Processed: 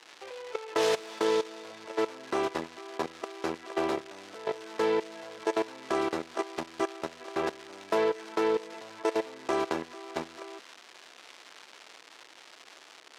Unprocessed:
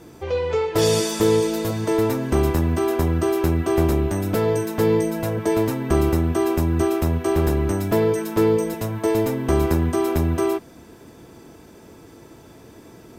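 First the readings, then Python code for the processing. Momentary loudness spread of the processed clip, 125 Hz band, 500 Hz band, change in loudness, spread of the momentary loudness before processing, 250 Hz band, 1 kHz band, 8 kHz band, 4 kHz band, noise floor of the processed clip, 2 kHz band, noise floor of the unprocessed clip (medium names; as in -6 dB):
21 LU, -31.0 dB, -10.0 dB, -11.0 dB, 4 LU, -15.5 dB, -5.5 dB, -13.5 dB, -6.5 dB, -54 dBFS, -5.0 dB, -46 dBFS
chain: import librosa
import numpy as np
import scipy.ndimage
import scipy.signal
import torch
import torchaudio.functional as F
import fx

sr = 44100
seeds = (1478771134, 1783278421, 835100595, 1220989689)

y = fx.tracing_dist(x, sr, depth_ms=0.25)
y = fx.level_steps(y, sr, step_db=19)
y = fx.dmg_crackle(y, sr, seeds[0], per_s=450.0, level_db=-32.0)
y = fx.bandpass_edges(y, sr, low_hz=550.0, high_hz=5100.0)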